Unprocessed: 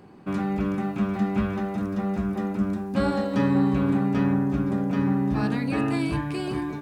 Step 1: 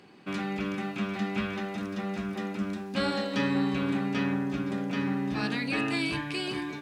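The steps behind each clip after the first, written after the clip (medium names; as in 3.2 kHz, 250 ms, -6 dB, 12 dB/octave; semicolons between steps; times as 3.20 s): frequency weighting D; trim -4.5 dB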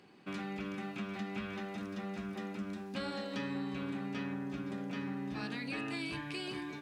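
compression 2.5:1, threshold -31 dBFS, peak gain reduction 5.5 dB; trim -6 dB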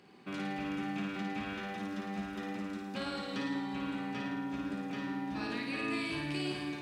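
flutter echo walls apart 9.4 m, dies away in 0.98 s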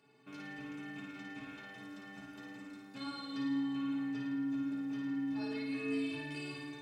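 inharmonic resonator 130 Hz, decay 0.27 s, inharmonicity 0.03; trim +3.5 dB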